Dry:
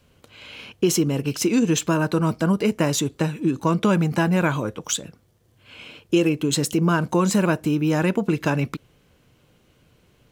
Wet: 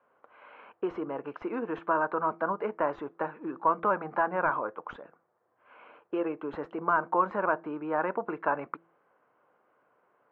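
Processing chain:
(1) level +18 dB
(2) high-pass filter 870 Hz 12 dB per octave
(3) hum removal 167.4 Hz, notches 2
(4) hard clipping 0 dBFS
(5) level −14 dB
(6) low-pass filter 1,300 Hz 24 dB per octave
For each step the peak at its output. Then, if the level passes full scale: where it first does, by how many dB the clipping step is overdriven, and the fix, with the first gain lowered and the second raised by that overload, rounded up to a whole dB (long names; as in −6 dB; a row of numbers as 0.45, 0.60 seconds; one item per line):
+10.5, +9.0, +9.0, 0.0, −14.0, −13.5 dBFS
step 1, 9.0 dB
step 1 +9 dB, step 5 −5 dB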